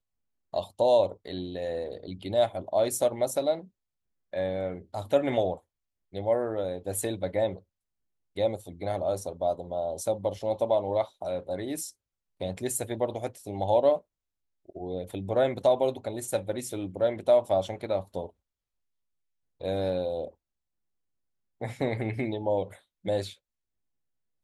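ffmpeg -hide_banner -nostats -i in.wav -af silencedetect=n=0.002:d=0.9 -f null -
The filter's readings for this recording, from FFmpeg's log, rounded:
silence_start: 18.30
silence_end: 19.60 | silence_duration: 1.30
silence_start: 20.33
silence_end: 21.61 | silence_duration: 1.28
silence_start: 23.36
silence_end: 24.43 | silence_duration: 1.08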